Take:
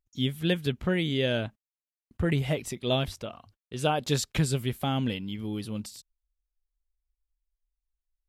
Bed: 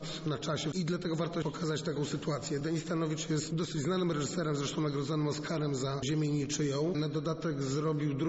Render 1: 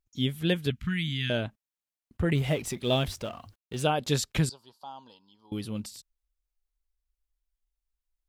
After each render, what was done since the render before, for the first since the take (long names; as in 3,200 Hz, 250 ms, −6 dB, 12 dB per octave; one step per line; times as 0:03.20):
0:00.70–0:01.30: Chebyshev band-stop filter 180–1,700 Hz
0:02.35–0:03.83: mu-law and A-law mismatch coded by mu
0:04.49–0:05.52: pair of resonant band-passes 2,100 Hz, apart 2.3 octaves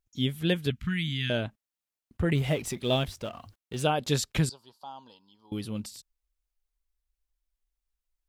0:02.87–0:03.34: transient designer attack −1 dB, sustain −5 dB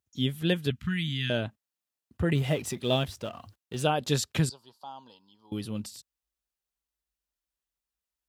high-pass filter 63 Hz 24 dB per octave
notch filter 2,200 Hz, Q 16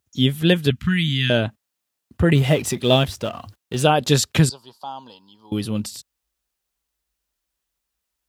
level +10 dB
brickwall limiter −3 dBFS, peak gain reduction 1 dB